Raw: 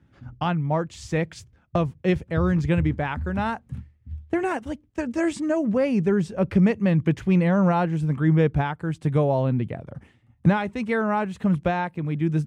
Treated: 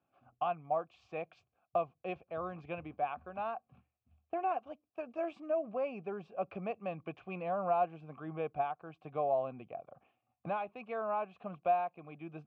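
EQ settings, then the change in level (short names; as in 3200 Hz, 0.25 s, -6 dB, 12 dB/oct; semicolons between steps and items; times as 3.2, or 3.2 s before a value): vowel filter a; LPF 4200 Hz 12 dB/oct; 0.0 dB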